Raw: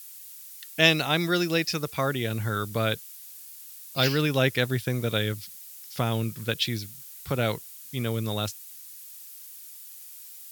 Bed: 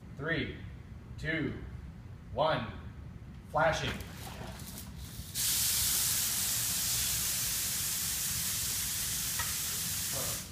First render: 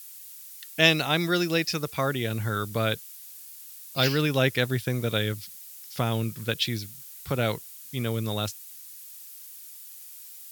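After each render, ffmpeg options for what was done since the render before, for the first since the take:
ffmpeg -i in.wav -af anull out.wav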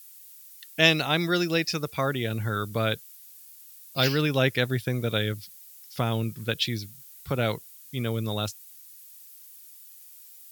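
ffmpeg -i in.wav -af "afftdn=noise_reduction=6:noise_floor=-45" out.wav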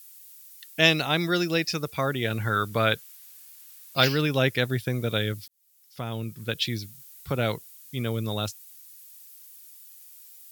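ffmpeg -i in.wav -filter_complex "[0:a]asettb=1/sr,asplit=3[link_01][link_02][link_03];[link_01]atrim=end=2.224[link_04];[link_02]atrim=start=2.22:end=4.05,asetpts=PTS-STARTPTS,afade=type=in:duration=0.004:curve=qsin,afade=type=out:start_time=1.826:duration=0.004:curve=qsin,equalizer=frequency=1500:width_type=o:width=2.6:gain=6[link_05];[link_03]atrim=start=4.046[link_06];[link_04][link_05]acrossfade=duration=0.004:curve1=hsin:curve2=qsin[link_07];[link_07][link_06]acrossfade=duration=0.004:curve1=qsin:curve2=hsin,asplit=2[link_08][link_09];[link_08]atrim=end=5.48,asetpts=PTS-STARTPTS,afade=type=out:start_time=5.476:duration=0.004:curve=hsin[link_10];[link_09]atrim=start=5.48,asetpts=PTS-STARTPTS,afade=type=in:duration=1.23[link_11];[link_10][link_11]concat=n=2:v=0:a=1" out.wav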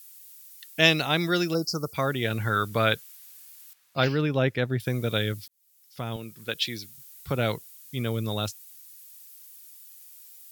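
ffmpeg -i in.wav -filter_complex "[0:a]asplit=3[link_01][link_02][link_03];[link_01]afade=type=out:start_time=1.53:duration=0.02[link_04];[link_02]asuperstop=centerf=2500:order=20:qfactor=0.88,afade=type=in:start_time=1.53:duration=0.02,afade=type=out:start_time=1.93:duration=0.02[link_05];[link_03]afade=type=in:start_time=1.93:duration=0.02[link_06];[link_04][link_05][link_06]amix=inputs=3:normalize=0,asettb=1/sr,asplit=3[link_07][link_08][link_09];[link_07]atrim=end=3.734[link_10];[link_08]atrim=start=3.73:end=4.8,asetpts=PTS-STARTPTS,afade=type=in:duration=0.004:curve=qsin,afade=type=out:start_time=1.066:duration=0.004:curve=qsin,lowpass=frequency=1500:poles=1[link_11];[link_09]atrim=start=4.796[link_12];[link_10][link_11]acrossfade=duration=0.004:curve1=hsin:curve2=qsin[link_13];[link_13][link_12]acrossfade=duration=0.004:curve1=qsin:curve2=hsin,asettb=1/sr,asplit=3[link_14][link_15][link_16];[link_14]atrim=end=6.164[link_17];[link_15]atrim=start=6.16:end=6.98,asetpts=PTS-STARTPTS,afade=type=in:duration=0.004:curve=qsin,afade=type=out:start_time=0.816:duration=0.004:curve=qsin,highpass=frequency=350:poles=1[link_18];[link_16]atrim=start=6.976[link_19];[link_17][link_18]acrossfade=duration=0.004:curve1=hsin:curve2=qsin[link_20];[link_20][link_19]acrossfade=duration=0.004:curve1=qsin:curve2=hsin" out.wav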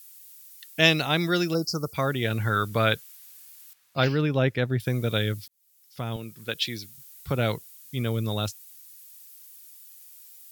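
ffmpeg -i in.wav -af "lowshelf=frequency=130:gain=4" out.wav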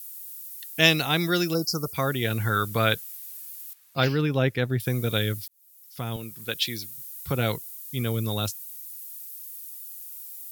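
ffmpeg -i in.wav -af "equalizer=frequency=14000:width=0.49:gain=10,bandreject=frequency=600:width=12" out.wav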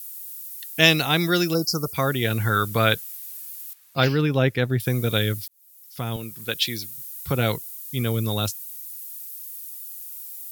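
ffmpeg -i in.wav -af "volume=3dB,alimiter=limit=-1dB:level=0:latency=1" out.wav

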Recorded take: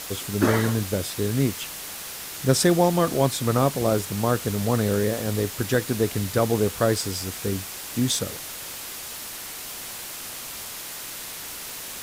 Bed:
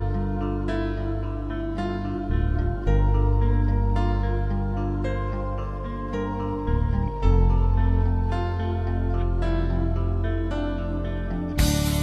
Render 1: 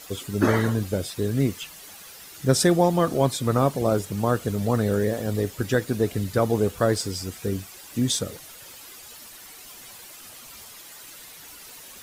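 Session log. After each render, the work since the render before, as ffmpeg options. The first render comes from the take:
ffmpeg -i in.wav -af "afftdn=noise_reduction=11:noise_floor=-36" out.wav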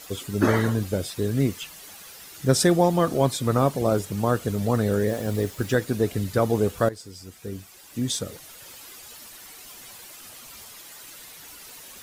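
ffmpeg -i in.wav -filter_complex "[0:a]asettb=1/sr,asplit=3[link_01][link_02][link_03];[link_01]atrim=end=5.084[link_04];[link_02]atrim=start=5.08:end=5.75,asetpts=PTS-STARTPTS,afade=type=in:duration=0.004:curve=qsin,afade=type=out:start_time=0.666:duration=0.004:curve=qsin,acrusher=bits=6:mix=0:aa=0.5[link_05];[link_03]atrim=start=5.746[link_06];[link_04][link_05]acrossfade=duration=0.004:curve1=hsin:curve2=qsin[link_07];[link_07][link_06]acrossfade=duration=0.004:curve1=qsin:curve2=hsin,asplit=2[link_08][link_09];[link_08]atrim=end=6.89,asetpts=PTS-STARTPTS,afade=type=out:start_time=6.886:duration=0.004:curve=hsin:silence=0.149624[link_10];[link_09]atrim=start=6.89,asetpts=PTS-STARTPTS,afade=type=in:duration=1.85:silence=0.149624[link_11];[link_10][link_11]concat=n=2:v=0:a=1" out.wav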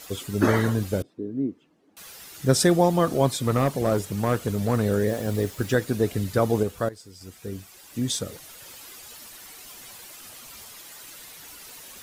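ffmpeg -i in.wav -filter_complex "[0:a]asettb=1/sr,asplit=3[link_01][link_02][link_03];[link_01]atrim=end=1.024[link_04];[link_02]atrim=start=1.02:end=1.97,asetpts=PTS-STARTPTS,afade=type=in:duration=0.004:curve=qsin,afade=type=out:start_time=0.946:duration=0.004:curve=qsin,bandpass=frequency=290:width_type=q:width=3[link_05];[link_03]atrim=start=1.966[link_06];[link_04][link_05]acrossfade=duration=0.004:curve1=hsin:curve2=qsin[link_07];[link_07][link_06]acrossfade=duration=0.004:curve1=qsin:curve2=hsin,asettb=1/sr,asplit=3[link_08][link_09][link_10];[link_08]atrim=end=3.374[link_11];[link_09]atrim=start=3.37:end=4.86,asetpts=PTS-STARTPTS,afade=type=in:duration=0.004:curve=qsin,afade=type=out:start_time=1.486:duration=0.004:curve=qsin,asoftclip=type=hard:threshold=-15.5dB[link_12];[link_10]atrim=start=4.856[link_13];[link_11][link_12]acrossfade=duration=0.004:curve1=hsin:curve2=qsin[link_14];[link_14][link_13]acrossfade=duration=0.004:curve1=qsin:curve2=hsin,asplit=3[link_15][link_16][link_17];[link_15]atrim=end=6.632[link_18];[link_16]atrim=start=6.628:end=7.212,asetpts=PTS-STARTPTS,volume=-4.5dB[link_19];[link_17]atrim=start=7.208[link_20];[link_18][link_19]acrossfade=duration=0.004:curve1=hsin:curve2=hsin[link_21];[link_21][link_20]acrossfade=duration=0.004:curve1=hsin:curve2=hsin" out.wav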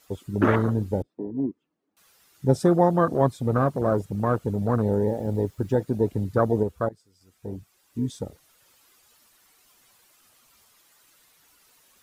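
ffmpeg -i in.wav -af "afwtdn=0.0501,equalizer=frequency=1200:width_type=o:width=0.73:gain=3.5" out.wav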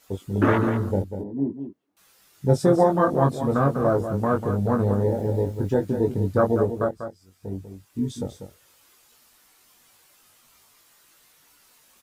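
ffmpeg -i in.wav -filter_complex "[0:a]asplit=2[link_01][link_02];[link_02]adelay=21,volume=-4dB[link_03];[link_01][link_03]amix=inputs=2:normalize=0,asplit=2[link_04][link_05];[link_05]aecho=0:1:194:0.355[link_06];[link_04][link_06]amix=inputs=2:normalize=0" out.wav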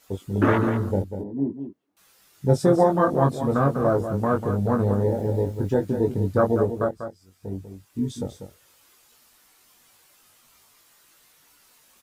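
ffmpeg -i in.wav -af anull out.wav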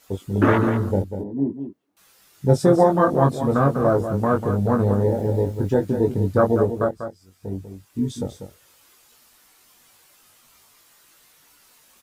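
ffmpeg -i in.wav -af "volume=2.5dB" out.wav

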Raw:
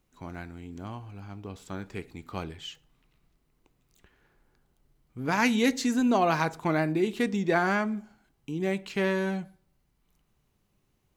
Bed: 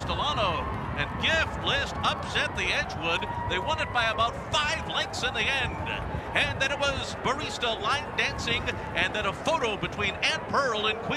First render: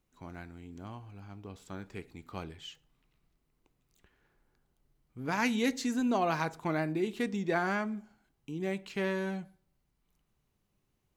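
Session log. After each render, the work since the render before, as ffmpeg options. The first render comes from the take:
ffmpeg -i in.wav -af "volume=-5.5dB" out.wav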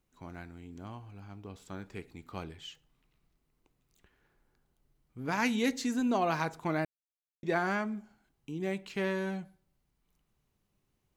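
ffmpeg -i in.wav -filter_complex "[0:a]asplit=3[link_01][link_02][link_03];[link_01]atrim=end=6.85,asetpts=PTS-STARTPTS,afade=type=out:start_time=6.846:duration=0.004:curve=hsin[link_04];[link_02]atrim=start=6.85:end=7.43,asetpts=PTS-STARTPTS,volume=0[link_05];[link_03]atrim=start=7.43,asetpts=PTS-STARTPTS,afade=type=in:duration=0.004:curve=hsin[link_06];[link_04][link_05][link_06]concat=n=3:v=0:a=1" out.wav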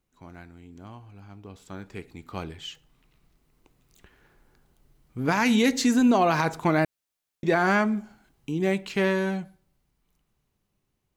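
ffmpeg -i in.wav -af "dynaudnorm=framelen=750:gausssize=7:maxgain=11.5dB,alimiter=limit=-12.5dB:level=0:latency=1:release=67" out.wav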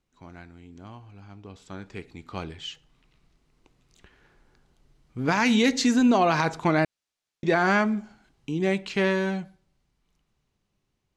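ffmpeg -i in.wav -af "lowpass=5700,highshelf=frequency=4300:gain=6.5" out.wav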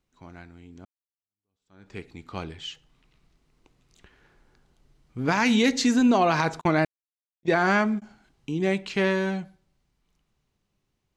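ffmpeg -i in.wav -filter_complex "[0:a]asettb=1/sr,asplit=3[link_01][link_02][link_03];[link_01]atrim=end=6.614[link_04];[link_02]atrim=start=6.61:end=8.02,asetpts=PTS-STARTPTS,afade=type=in:duration=0.004:curve=qsin,afade=type=out:start_time=1.406:duration=0.004:curve=qsin,agate=range=-37dB:threshold=-30dB:ratio=16:release=100:detection=peak[link_05];[link_03]atrim=start=8.016[link_06];[link_04][link_05]acrossfade=duration=0.004:curve1=hsin:curve2=qsin[link_07];[link_07][link_06]acrossfade=duration=0.004:curve1=qsin:curve2=hsin,asplit=2[link_08][link_09];[link_08]atrim=end=0.85,asetpts=PTS-STARTPTS,afade=type=out:start_time=0.846:duration=0.004:curve=hsin[link_10];[link_09]atrim=start=0.85,asetpts=PTS-STARTPTS,afade=type=in:duration=1.08:curve=exp[link_11];[link_10][link_11]concat=n=2:v=0:a=1" out.wav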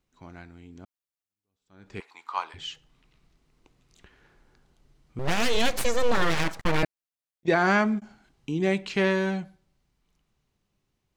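ffmpeg -i in.wav -filter_complex "[0:a]asettb=1/sr,asplit=3[link_01][link_02][link_03];[link_01]atrim=end=2.004[link_04];[link_02]atrim=start=2:end=2.54,asetpts=PTS-STARTPTS,afade=type=in:duration=0.004:curve=qsin,afade=type=out:start_time=0.536:duration=0.004:curve=qsin,highpass=frequency=980:width_type=q:width=5.4[link_05];[link_03]atrim=start=2.536[link_06];[link_04][link_05]acrossfade=duration=0.004:curve1=hsin:curve2=qsin[link_07];[link_07][link_06]acrossfade=duration=0.004:curve1=qsin:curve2=hsin,asettb=1/sr,asplit=3[link_08][link_09][link_10];[link_08]atrim=end=5.194[link_11];[link_09]atrim=start=5.19:end=6.83,asetpts=PTS-STARTPTS,afade=type=in:duration=0.004:curve=qsin,afade=type=out:start_time=1.636:duration=0.004:curve=qsin,aeval=exprs='abs(val(0))':channel_layout=same[link_12];[link_10]atrim=start=6.826[link_13];[link_11][link_12]acrossfade=duration=0.004:curve1=hsin:curve2=qsin[link_14];[link_14][link_13]acrossfade=duration=0.004:curve1=qsin:curve2=hsin" out.wav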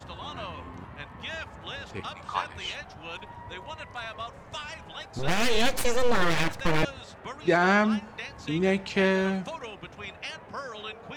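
ffmpeg -i in.wav -i bed.wav -filter_complex "[1:a]volume=-12dB[link_01];[0:a][link_01]amix=inputs=2:normalize=0" out.wav

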